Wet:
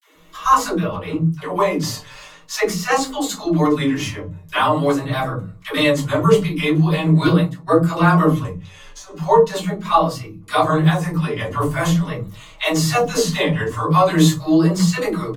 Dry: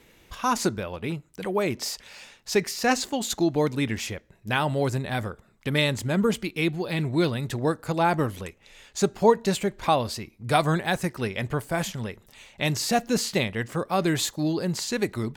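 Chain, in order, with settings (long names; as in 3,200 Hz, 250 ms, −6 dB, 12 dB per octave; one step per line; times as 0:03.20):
0:08.45–0:09.06: downward compressor 6 to 1, threshold −42 dBFS, peak gain reduction 23.5 dB
all-pass dispersion lows, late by 141 ms, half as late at 340 Hz
0:07.25–0:07.73: noise gate −26 dBFS, range −27 dB
parametric band 1,100 Hz +13 dB 0.43 octaves
mains-hum notches 50/100/150/200/250 Hz
comb filter 6.5 ms, depth 75%
automatic gain control gain up to 3.5 dB
convolution reverb RT60 0.25 s, pre-delay 3 ms, DRR −5 dB
pitch vibrato 0.42 Hz 72 cents
0:00.96–0:01.50: high-shelf EQ 4,700 Hz −6.5 dB
level −5.5 dB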